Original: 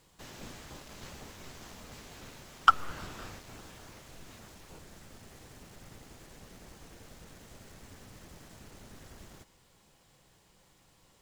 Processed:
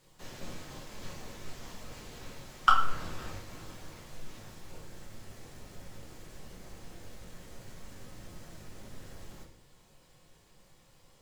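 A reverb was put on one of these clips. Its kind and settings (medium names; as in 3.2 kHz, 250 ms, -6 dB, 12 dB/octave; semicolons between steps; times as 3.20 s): simulated room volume 69 m³, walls mixed, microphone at 0.92 m; trim -3 dB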